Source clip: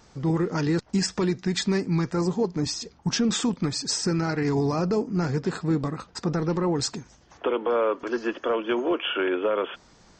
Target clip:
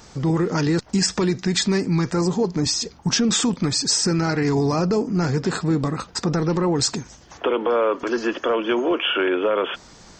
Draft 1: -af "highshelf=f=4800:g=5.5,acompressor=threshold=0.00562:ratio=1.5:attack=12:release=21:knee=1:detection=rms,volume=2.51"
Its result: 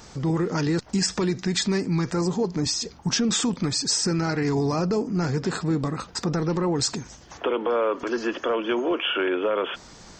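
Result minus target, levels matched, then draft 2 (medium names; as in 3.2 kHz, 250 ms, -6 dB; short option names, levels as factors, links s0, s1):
compression: peak gain reduction +3.5 dB
-af "highshelf=f=4800:g=5.5,acompressor=threshold=0.0188:ratio=1.5:attack=12:release=21:knee=1:detection=rms,volume=2.51"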